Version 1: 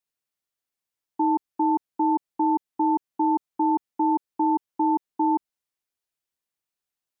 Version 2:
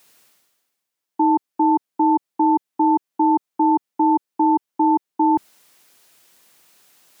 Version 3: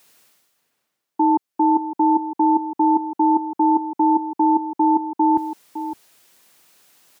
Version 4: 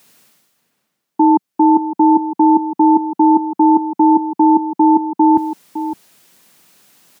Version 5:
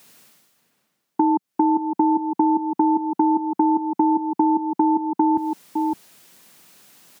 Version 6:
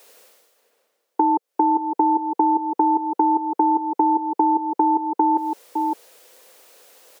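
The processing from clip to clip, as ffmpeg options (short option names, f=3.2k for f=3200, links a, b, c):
-af "highpass=150,areverse,acompressor=mode=upward:threshold=-39dB:ratio=2.5,areverse,volume=5.5dB"
-filter_complex "[0:a]asplit=2[a][b];[b]adelay=559.8,volume=-11dB,highshelf=f=4k:g=-12.6[c];[a][c]amix=inputs=2:normalize=0"
-af "equalizer=f=190:t=o:w=1.1:g=8.5,volume=4dB"
-af "acompressor=threshold=-16dB:ratio=5"
-af "highpass=f=490:t=q:w=4.9"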